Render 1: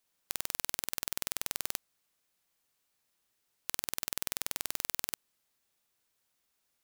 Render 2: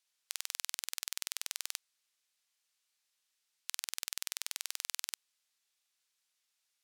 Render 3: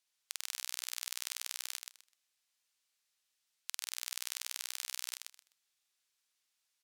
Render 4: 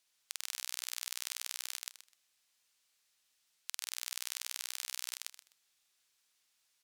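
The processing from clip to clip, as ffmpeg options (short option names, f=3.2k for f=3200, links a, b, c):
-af "bandpass=f=4.6k:t=q:w=0.58:csg=0,volume=1dB"
-af "aecho=1:1:127|254|381:0.501|0.1|0.02,volume=-1.5dB"
-af "alimiter=limit=-20dB:level=0:latency=1:release=142,volume=5.5dB"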